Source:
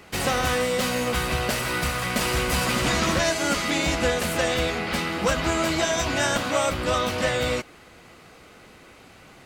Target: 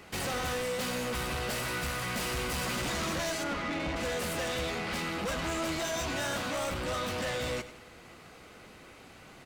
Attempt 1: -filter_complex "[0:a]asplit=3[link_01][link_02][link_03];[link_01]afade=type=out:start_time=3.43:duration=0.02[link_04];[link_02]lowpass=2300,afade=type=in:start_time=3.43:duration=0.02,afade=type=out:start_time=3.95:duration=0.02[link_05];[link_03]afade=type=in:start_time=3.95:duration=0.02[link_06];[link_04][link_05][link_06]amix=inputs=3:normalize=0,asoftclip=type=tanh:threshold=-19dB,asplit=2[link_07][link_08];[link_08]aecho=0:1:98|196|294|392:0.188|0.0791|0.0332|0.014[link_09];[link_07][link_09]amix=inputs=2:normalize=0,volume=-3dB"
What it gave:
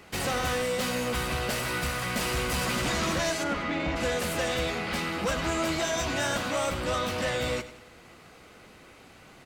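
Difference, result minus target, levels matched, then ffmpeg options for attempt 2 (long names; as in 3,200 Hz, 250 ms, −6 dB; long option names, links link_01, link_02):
soft clipping: distortion −7 dB
-filter_complex "[0:a]asplit=3[link_01][link_02][link_03];[link_01]afade=type=out:start_time=3.43:duration=0.02[link_04];[link_02]lowpass=2300,afade=type=in:start_time=3.43:duration=0.02,afade=type=out:start_time=3.95:duration=0.02[link_05];[link_03]afade=type=in:start_time=3.95:duration=0.02[link_06];[link_04][link_05][link_06]amix=inputs=3:normalize=0,asoftclip=type=tanh:threshold=-27.5dB,asplit=2[link_07][link_08];[link_08]aecho=0:1:98|196|294|392:0.188|0.0791|0.0332|0.014[link_09];[link_07][link_09]amix=inputs=2:normalize=0,volume=-3dB"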